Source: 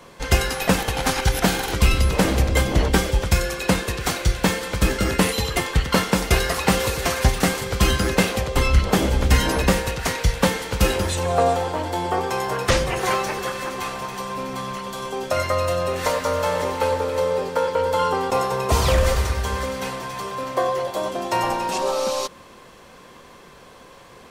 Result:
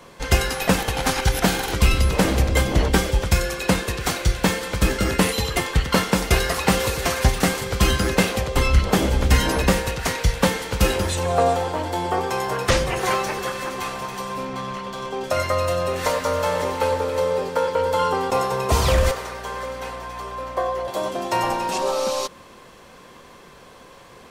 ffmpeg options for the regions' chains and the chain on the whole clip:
-filter_complex "[0:a]asettb=1/sr,asplit=3[s0][s1][s2];[s0]atrim=end=14.454[s3];[s1]atrim=start=14.45:end=15.24,asetpts=PTS-STARTPTS,afade=t=in:d=0.004:c=qsin,afade=t=out:st=0.786:d=0.004:c=qsin,equalizer=f=14000:w=1.9:g=7,adynamicsmooth=sensitivity=6.5:basefreq=4100[s4];[s2]atrim=start=15.236[s5];[s3][s4]acrossfade=d=0.004:c1=hsin:c2=qsin[s6];[s6][s5]acrossfade=d=0.004:c1=qsin:c2=hsin,asettb=1/sr,asplit=3[s7][s8][s9];[s7]atrim=end=19.114[s10];[s8]atrim=start=19.11:end=20.88,asetpts=PTS-STARTPTS,afade=t=in:d=0.004:c=qsin,afade=t=out:st=1.766:d=0.004:c=qsin,highpass=460,highshelf=f=2100:g=-8,aeval=exprs='val(0)+0.01*(sin(2*PI*60*n/s)+sin(2*PI*2*60*n/s)/2+sin(2*PI*3*60*n/s)/3+sin(2*PI*4*60*n/s)/4+sin(2*PI*5*60*n/s)/5)':c=same[s11];[s9]atrim=start=20.876[s12];[s10][s11]acrossfade=d=0.004:c1=hsin:c2=qsin[s13];[s13][s12]acrossfade=d=0.004:c1=qsin:c2=hsin"

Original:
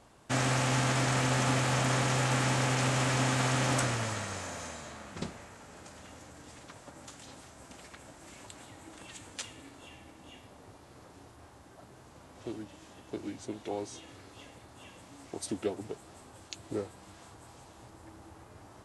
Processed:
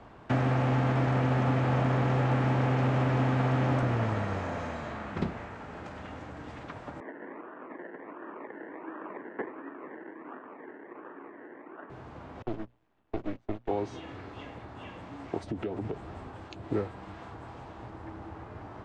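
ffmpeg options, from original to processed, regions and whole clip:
-filter_complex "[0:a]asettb=1/sr,asplit=3[s0][s1][s2];[s0]atrim=end=7.004[s3];[s1]atrim=start=7:end=11.9,asetpts=PTS-STARTPTS,afade=t=in:d=0.004:c=qsin,afade=t=out:st=4.896:d=0.004:c=qsin,acrusher=samples=29:mix=1:aa=0.000001:lfo=1:lforange=17.4:lforate=1.4,highpass=f=260:w=0.5412,highpass=f=260:w=1.3066,equalizer=f=350:t=q:w=4:g=4,equalizer=f=740:t=q:w=4:g=-5,equalizer=f=1100:t=q:w=4:g=4,equalizer=f=1800:t=q:w=4:g=8,lowpass=f=2000:w=0.5412,lowpass=f=2000:w=1.3066[s4];[s2]atrim=start=11.896[s5];[s3][s4]acrossfade=d=0.004:c1=hsin:c2=qsin[s6];[s6][s5]acrossfade=d=0.004:c1=qsin:c2=hsin,asettb=1/sr,asplit=3[s7][s8][s9];[s7]atrim=end=12.424[s10];[s8]atrim=start=12.42:end=13.69,asetpts=PTS-STARTPTS,afade=t=in:d=0.004:c=qsin,afade=t=out:st=1.266:d=0.004:c=qsin,agate=range=0.0562:threshold=0.00708:ratio=16:release=100:detection=peak,bandreject=f=60:t=h:w=6,bandreject=f=120:t=h:w=6,bandreject=f=180:t=h:w=6,aeval=exprs='max(val(0),0)':c=same[s11];[s9]atrim=start=13.686[s12];[s10][s11]acrossfade=d=0.004:c1=hsin:c2=qsin[s13];[s13][s12]acrossfade=d=0.004:c1=qsin:c2=hsin,asettb=1/sr,asplit=3[s14][s15][s16];[s14]atrim=end=15.444[s17];[s15]atrim=start=15.44:end=16.28,asetpts=PTS-STARTPTS,afade=t=in:d=0.004:c=qsin,afade=t=out:st=0.836:d=0.004:c=qsin,lowshelf=f=100:g=9.5,acompressor=threshold=0.0126:ratio=6:attack=3.2:release=140:knee=1:detection=peak[s18];[s16]atrim=start=16.276[s19];[s17][s18]acrossfade=d=0.004:c1=hsin:c2=qsin[s20];[s20][s19]acrossfade=d=0.004:c1=qsin:c2=hsin,bandreject=f=550:w=18,acrossover=split=180|810[s21][s22][s23];[s21]acompressor=threshold=0.0126:ratio=4[s24];[s22]acompressor=threshold=0.0126:ratio=4[s25];[s23]acompressor=threshold=0.00562:ratio=4[s26];[s24][s25][s26]amix=inputs=3:normalize=0,lowpass=2200,volume=2.82"

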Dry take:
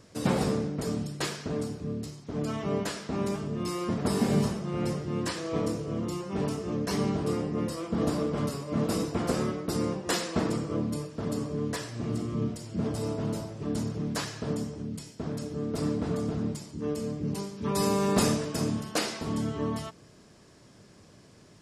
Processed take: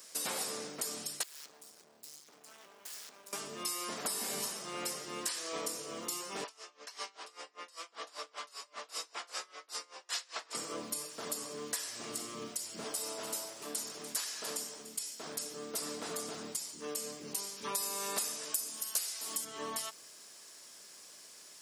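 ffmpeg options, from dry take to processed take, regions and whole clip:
-filter_complex "[0:a]asettb=1/sr,asplit=3[s0][s1][s2];[s0]atrim=end=1.234[s3];[s1]atrim=start=1.23:end=3.33,asetpts=PTS-STARTPTS,afade=t=in:d=0.004:c=qsin,afade=t=out:st=2.096:d=0.004:c=qsin,acompressor=threshold=0.0112:ratio=10:attack=3.2:release=140:knee=1:detection=peak,flanger=delay=4.9:depth=1.3:regen=-73:speed=1.6:shape=triangular,aeval=exprs='max(val(0),0)':c=same[s4];[s2]atrim=start=3.326[s5];[s3][s4]acrossfade=d=0.004:c1=hsin:c2=qsin[s6];[s6][s5]acrossfade=d=0.004:c1=qsin:c2=hsin,asettb=1/sr,asplit=3[s7][s8][s9];[s7]atrim=end=6.444[s10];[s8]atrim=start=6.44:end=10.55,asetpts=PTS-STARTPTS,afade=t=in:d=0.004:c=qsin,afade=t=out:st=4.106:d=0.004:c=qsin,highpass=730,lowpass=5300,aeval=exprs='val(0)*pow(10,-25*(0.5-0.5*cos(2*PI*5.1*n/s))/20)':c=same[s11];[s9]atrim=start=10.546[s12];[s10][s11]acrossfade=d=0.004:c1=hsin:c2=qsin[s13];[s13][s12]acrossfade=d=0.004:c1=qsin:c2=hsin,asettb=1/sr,asplit=3[s14][s15][s16];[s14]atrim=end=12.844[s17];[s15]atrim=start=12.84:end=15.23,asetpts=PTS-STARTPTS,afade=t=in:d=0.004:c=qsin,afade=t=out:st=2.386:d=0.004:c=qsin,lowshelf=f=160:g=-10,aecho=1:1:292:0.158,atrim=end_sample=105399[s18];[s16]atrim=start=15.226[s19];[s17][s18]acrossfade=d=0.004:c1=hsin:c2=qsin[s20];[s20][s19]acrossfade=d=0.004:c1=qsin:c2=hsin,asettb=1/sr,asplit=3[s21][s22][s23];[s21]atrim=end=18.544[s24];[s22]atrim=start=18.54:end=19.45,asetpts=PTS-STARTPTS,afade=t=in:d=0.004:c=qsin,afade=t=out:st=0.906:d=0.004:c=qsin,highpass=180,aemphasis=mode=production:type=50kf[s25];[s23]atrim=start=19.446[s26];[s24][s25]acrossfade=d=0.004:c1=hsin:c2=qsin[s27];[s27][s26]acrossfade=d=0.004:c1=qsin:c2=hsin,highpass=f=720:p=1,aemphasis=mode=production:type=riaa,acompressor=threshold=0.02:ratio=6"

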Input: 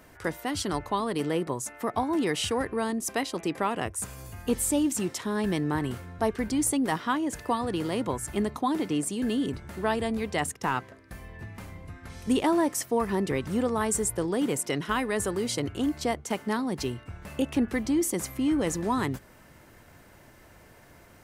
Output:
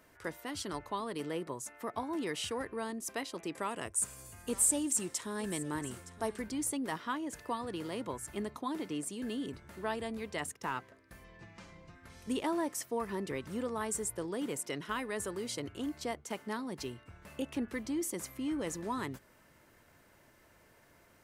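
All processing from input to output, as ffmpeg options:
-filter_complex "[0:a]asettb=1/sr,asplit=3[s0][s1][s2];[s0]atrim=end=3.524[s3];[s1]atrim=start=3.52:end=6.42,asetpts=PTS-STARTPTS,afade=t=in:d=0.004:c=qsin,afade=t=out:st=2.896:d=0.004:c=qsin,equalizer=f=8400:t=o:w=0.81:g=11,aecho=1:1:916:0.141,atrim=end_sample=127890[s4];[s2]atrim=start=6.416[s5];[s3][s4]acrossfade=d=0.004:c1=hsin:c2=qsin[s6];[s6][s5]acrossfade=d=0.004:c1=qsin:c2=hsin,asettb=1/sr,asplit=3[s7][s8][s9];[s7]atrim=end=11.244[s10];[s8]atrim=start=11.24:end=11.95,asetpts=PTS-STARTPTS,afade=t=in:d=0.004:c=qsin,afade=t=out:st=0.706:d=0.004:c=qsin,lowpass=f=6100:w=0.5412,lowpass=f=6100:w=1.3066,aemphasis=mode=production:type=50fm,aecho=1:1:5.9:0.5,atrim=end_sample=31311[s11];[s9]atrim=start=11.946[s12];[s10][s11]acrossfade=d=0.004:c1=hsin:c2=qsin[s13];[s13][s12]acrossfade=d=0.004:c1=qsin:c2=hsin,lowshelf=f=210:g=-6,bandreject=f=760:w=12,volume=0.398"

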